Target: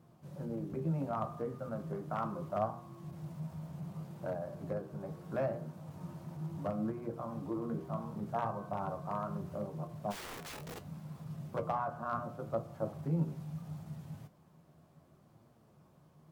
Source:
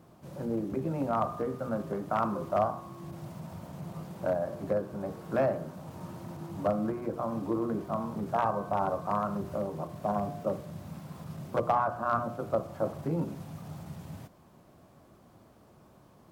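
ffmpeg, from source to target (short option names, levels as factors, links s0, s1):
-filter_complex "[0:a]equalizer=f=150:w=4.5:g=11.5,asplit=3[s0][s1][s2];[s0]afade=t=out:st=10.1:d=0.02[s3];[s1]aeval=exprs='(mod(42.2*val(0)+1,2)-1)/42.2':c=same,afade=t=in:st=10.1:d=0.02,afade=t=out:st=10.81:d=0.02[s4];[s2]afade=t=in:st=10.81:d=0.02[s5];[s3][s4][s5]amix=inputs=3:normalize=0,flanger=delay=8.5:depth=4.4:regen=61:speed=0.71:shape=sinusoidal,volume=0.631"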